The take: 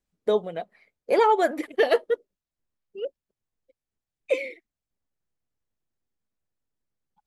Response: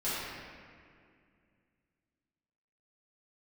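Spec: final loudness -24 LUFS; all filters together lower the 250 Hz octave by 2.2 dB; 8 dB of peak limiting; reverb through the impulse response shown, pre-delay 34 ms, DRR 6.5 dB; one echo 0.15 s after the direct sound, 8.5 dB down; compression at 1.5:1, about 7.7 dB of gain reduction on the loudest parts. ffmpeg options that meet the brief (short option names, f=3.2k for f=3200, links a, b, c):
-filter_complex "[0:a]equalizer=f=250:t=o:g=-3.5,acompressor=threshold=-38dB:ratio=1.5,alimiter=level_in=1dB:limit=-24dB:level=0:latency=1,volume=-1dB,aecho=1:1:150:0.376,asplit=2[a][b];[1:a]atrim=start_sample=2205,adelay=34[c];[b][c]afir=irnorm=-1:irlink=0,volume=-14.5dB[d];[a][d]amix=inputs=2:normalize=0,volume=12dB"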